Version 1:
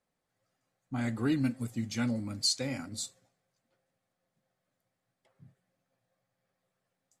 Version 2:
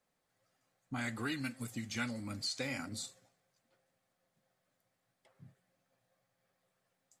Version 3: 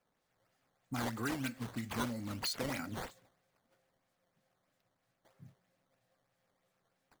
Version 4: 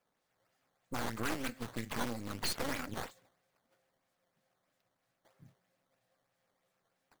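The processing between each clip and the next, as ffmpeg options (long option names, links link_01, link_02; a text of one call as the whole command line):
ffmpeg -i in.wav -filter_complex "[0:a]acrossover=split=2600[link_01][link_02];[link_02]acompressor=threshold=-43dB:ratio=4:attack=1:release=60[link_03];[link_01][link_03]amix=inputs=2:normalize=0,lowshelf=frequency=420:gain=-4,acrossover=split=1100[link_04][link_05];[link_04]acompressor=threshold=-41dB:ratio=6[link_06];[link_06][link_05]amix=inputs=2:normalize=0,volume=3dB" out.wav
ffmpeg -i in.wav -af "acrusher=samples=10:mix=1:aa=0.000001:lfo=1:lforange=16:lforate=3.1,volume=1dB" out.wav
ffmpeg -i in.wav -af "lowshelf=frequency=180:gain=-6,aeval=exprs='0.0596*(cos(1*acos(clip(val(0)/0.0596,-1,1)))-cos(1*PI/2))+0.0237*(cos(2*acos(clip(val(0)/0.0596,-1,1)))-cos(2*PI/2))+0.0119*(cos(6*acos(clip(val(0)/0.0596,-1,1)))-cos(6*PI/2))':channel_layout=same,aeval=exprs='0.0596*(abs(mod(val(0)/0.0596+3,4)-2)-1)':channel_layout=same" out.wav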